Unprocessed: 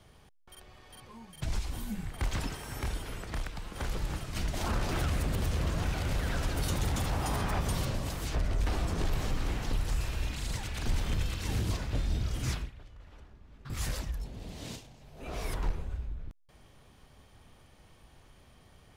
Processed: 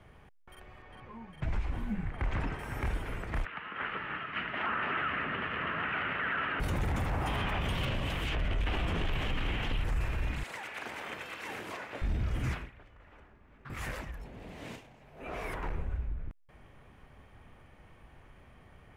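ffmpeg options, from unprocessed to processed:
ffmpeg -i in.wav -filter_complex "[0:a]asettb=1/sr,asplit=3[link_01][link_02][link_03];[link_01]atrim=end=0.824[link_04];[link_02]atrim=start=0.82:end=2.59,asetpts=PTS-STARTPTS,afade=type=in:duration=0.004:curve=qsin,afade=type=out:start_time=1.766:duration=0.004:curve=qsin,aemphasis=mode=reproduction:type=50fm[link_05];[link_03]atrim=start=2.586[link_06];[link_04][link_05]acrossfade=duration=0.004:curve1=hsin:curve2=qsin[link_07];[link_07][link_06]acrossfade=duration=0.004:curve1=qsin:curve2=hsin,asettb=1/sr,asplit=3[link_08][link_09][link_10];[link_08]atrim=end=3.454[link_11];[link_09]atrim=start=3.45:end=6.6,asetpts=PTS-STARTPTS,afade=type=in:duration=0.004:curve=qsin,afade=type=out:start_time=3.146:duration=0.004:curve=qsin,highpass=280,equalizer=frequency=330:width_type=q:width=4:gain=-5,equalizer=frequency=530:width_type=q:width=4:gain=-6,equalizer=frequency=760:width_type=q:width=4:gain=-4,equalizer=frequency=1300:width_type=q:width=4:gain=9,equalizer=frequency=1800:width_type=q:width=4:gain=7,equalizer=frequency=2900:width_type=q:width=4:gain=9,lowpass=frequency=3200:width=0.5412,lowpass=frequency=3200:width=1.3066[link_12];[link_10]atrim=start=6.596[link_13];[link_11][link_12]acrossfade=duration=0.004:curve1=hsin:curve2=qsin[link_14];[link_14][link_13]acrossfade=duration=0.004:curve1=qsin:curve2=hsin,asettb=1/sr,asplit=3[link_15][link_16][link_17];[link_15]atrim=end=7.274[link_18];[link_16]atrim=start=7.27:end=9.84,asetpts=PTS-STARTPTS,afade=type=in:duration=0.004:curve=qsin,afade=type=out:start_time=2.566:duration=0.004:curve=qsin,equalizer=frequency=3100:width_type=o:width=0.76:gain=14[link_19];[link_17]atrim=start=9.836[link_20];[link_18][link_19]acrossfade=duration=0.004:curve1=hsin:curve2=qsin[link_21];[link_21][link_20]acrossfade=duration=0.004:curve1=qsin:curve2=hsin,asettb=1/sr,asplit=3[link_22][link_23][link_24];[link_22]atrim=end=10.434[link_25];[link_23]atrim=start=10.43:end=12.02,asetpts=PTS-STARTPTS,afade=type=in:duration=0.004:curve=qsin,afade=type=out:start_time=1.586:duration=0.004:curve=qsin,highpass=480[link_26];[link_24]atrim=start=12.016[link_27];[link_25][link_26]acrossfade=duration=0.004:curve1=hsin:curve2=qsin[link_28];[link_28][link_27]acrossfade=duration=0.004:curve1=qsin:curve2=hsin,asettb=1/sr,asplit=3[link_29][link_30][link_31];[link_29]atrim=end=12.534[link_32];[link_30]atrim=start=12.53:end=15.72,asetpts=PTS-STARTPTS,afade=type=in:duration=0.004:curve=qsin,afade=type=out:start_time=3.186:duration=0.004:curve=qsin,lowshelf=frequency=170:gain=-10.5[link_33];[link_31]atrim=start=15.716[link_34];[link_32][link_33]acrossfade=duration=0.004:curve1=hsin:curve2=qsin[link_35];[link_35][link_34]acrossfade=duration=0.004:curve1=qsin:curve2=hsin,highshelf=frequency=3100:width_type=q:width=1.5:gain=-11,alimiter=level_in=2.5dB:limit=-24dB:level=0:latency=1:release=13,volume=-2.5dB,volume=2dB" out.wav

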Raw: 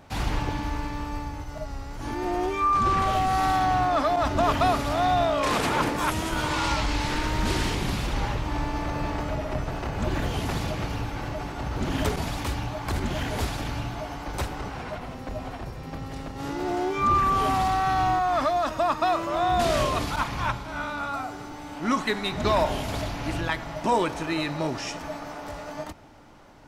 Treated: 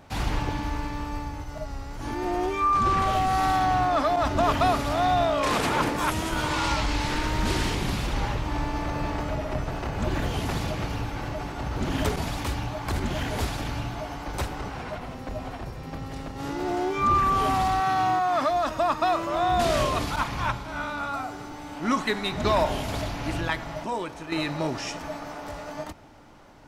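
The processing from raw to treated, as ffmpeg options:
ffmpeg -i in.wav -filter_complex "[0:a]asettb=1/sr,asplit=3[link_01][link_02][link_03];[link_01]atrim=end=17.804[link_04];[link_02]atrim=start=17.8:end=18.5,asetpts=PTS-STARTPTS,afade=type=in:duration=0.004:curve=qsin,afade=type=out:start_time=0.696:duration=0.004:curve=qsin,highpass=130[link_05];[link_03]atrim=start=18.496[link_06];[link_04][link_05]acrossfade=duration=0.004:curve1=hsin:curve2=qsin[link_07];[link_07][link_06]acrossfade=duration=0.004:curve1=qsin:curve2=hsin,asplit=3[link_08][link_09][link_10];[link_08]atrim=end=23.842[link_11];[link_09]atrim=start=23.838:end=24.322,asetpts=PTS-STARTPTS,volume=-7.5dB[link_12];[link_10]atrim=start=24.318[link_13];[link_11][link_12]acrossfade=duration=0.004:curve1=hsin:curve2=hsin[link_14];[link_14][link_13]acrossfade=duration=0.004:curve1=hsin:curve2=hsin" out.wav

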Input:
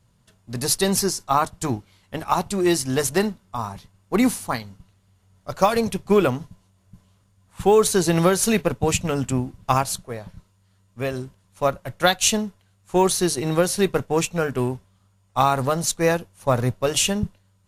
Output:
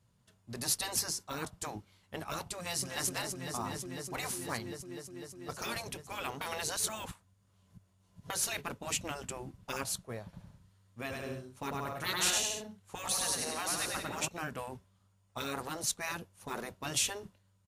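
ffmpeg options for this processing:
ffmpeg -i in.wav -filter_complex "[0:a]asplit=2[link_01][link_02];[link_02]afade=type=in:start_time=2.57:duration=0.01,afade=type=out:start_time=3.07:duration=0.01,aecho=0:1:250|500|750|1000|1250|1500|1750|2000|2250|2500|2750|3000:0.398107|0.338391|0.287632|0.244488|0.207814|0.176642|0.150146|0.127624|0.10848|0.0922084|0.0783771|0.0666205[link_03];[link_01][link_03]amix=inputs=2:normalize=0,asettb=1/sr,asplit=3[link_04][link_05][link_06];[link_04]atrim=end=10.234[link_07];[link_05]atrim=start=10.23:end=14.28,asetpts=PTS-STARTPTS,afade=type=in:duration=0.004:curve=qsin,afade=type=out:start_time=4.046:duration=0.004:curve=qsin,aecho=1:1:100|175|231.2|273.4|305.1:0.631|0.398|0.251|0.158|0.1,atrim=end_sample=178605[link_08];[link_06]atrim=start=14.276[link_09];[link_07][link_08]acrossfade=duration=0.004:curve1=hsin:curve2=qsin[link_10];[link_10][link_09]acrossfade=duration=0.004:curve1=qsin:curve2=hsin,asplit=3[link_11][link_12][link_13];[link_11]atrim=end=6.412[link_14];[link_12]atrim=start=6.408:end=8.302,asetpts=PTS-STARTPTS,areverse[link_15];[link_13]atrim=start=8.298[link_16];[link_14][link_15]acrossfade=duration=0.004:curve1=hsin:curve2=hsin[link_17];[link_17][link_16]acrossfade=duration=0.004:curve1=hsin:curve2=hsin,highpass=49,afftfilt=real='re*lt(hypot(re,im),0.282)':imag='im*lt(hypot(re,im),0.282)':win_size=1024:overlap=0.75,volume=-8.5dB" out.wav

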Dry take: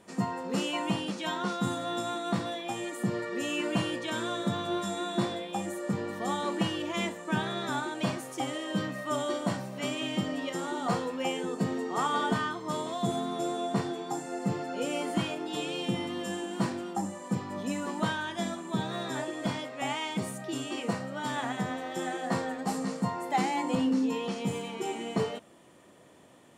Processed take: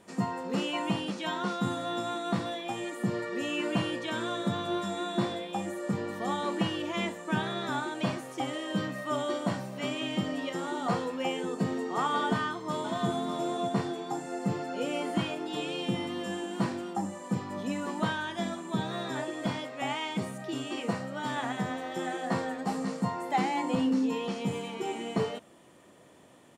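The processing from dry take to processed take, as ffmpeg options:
ffmpeg -i in.wav -filter_complex "[0:a]asplit=2[link_01][link_02];[link_02]afade=type=in:start_time=12.24:duration=0.01,afade=type=out:start_time=13.08:duration=0.01,aecho=0:1:600|1200:0.334965|0.0334965[link_03];[link_01][link_03]amix=inputs=2:normalize=0,acrossover=split=4600[link_04][link_05];[link_05]acompressor=threshold=-50dB:ratio=4:attack=1:release=60[link_06];[link_04][link_06]amix=inputs=2:normalize=0" out.wav

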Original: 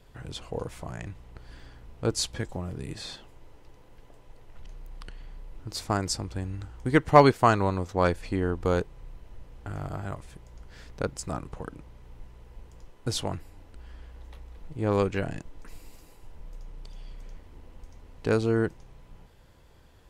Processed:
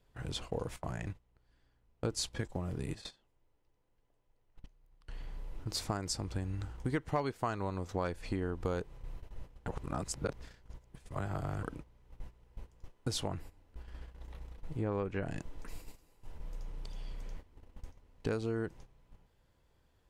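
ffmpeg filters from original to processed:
ffmpeg -i in.wav -filter_complex "[0:a]asettb=1/sr,asplit=3[link_01][link_02][link_03];[link_01]atrim=end=0.764[link_04];[link_02]atrim=start=0.76:end=5.08,asetpts=PTS-STARTPTS,afade=type=in:duration=0.004:curve=qsin,afade=type=out:start_time=4.316:duration=0.004:curve=qsin,agate=range=-10dB:threshold=-39dB:ratio=16:release=100:detection=peak[link_05];[link_03]atrim=start=5.076[link_06];[link_04][link_05]acrossfade=duration=0.004:curve1=hsin:curve2=qsin[link_07];[link_07][link_06]acrossfade=duration=0.004:curve1=qsin:curve2=hsin,asettb=1/sr,asplit=3[link_08][link_09][link_10];[link_08]atrim=end=13.274[link_11];[link_09]atrim=start=13.27:end=15.27,asetpts=PTS-STARTPTS,afade=type=in:duration=0.004:curve=qsin,afade=type=out:start_time=1.996:duration=0.004:curve=qsin,acrossover=split=2700[link_12][link_13];[link_13]acompressor=threshold=-59dB:ratio=4:attack=1:release=60[link_14];[link_12][link_14]amix=inputs=2:normalize=0[link_15];[link_10]atrim=start=15.266[link_16];[link_11][link_15]acrossfade=duration=0.004:curve1=hsin:curve2=qsin[link_17];[link_17][link_16]acrossfade=duration=0.004:curve1=qsin:curve2=hsin,asplit=3[link_18][link_19][link_20];[link_18]atrim=end=9.682[link_21];[link_19]atrim=start=9.678:end=11.632,asetpts=PTS-STARTPTS,areverse[link_22];[link_20]atrim=start=11.628[link_23];[link_21][link_22]acrossfade=duration=0.004:curve1=hsin:curve2=hsin[link_24];[link_24][link_23]acrossfade=duration=0.004:curve1=hsin:curve2=hsin,agate=range=-14dB:threshold=-43dB:ratio=16:detection=peak,acompressor=threshold=-32dB:ratio=5" out.wav

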